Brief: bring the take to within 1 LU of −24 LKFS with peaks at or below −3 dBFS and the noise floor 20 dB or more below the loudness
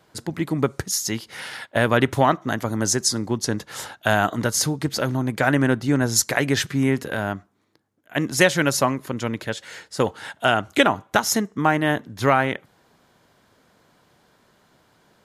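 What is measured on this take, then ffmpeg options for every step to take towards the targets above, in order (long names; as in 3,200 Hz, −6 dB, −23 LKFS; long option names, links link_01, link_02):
integrated loudness −22.0 LKFS; sample peak −3.5 dBFS; target loudness −24.0 LKFS
→ -af "volume=-2dB"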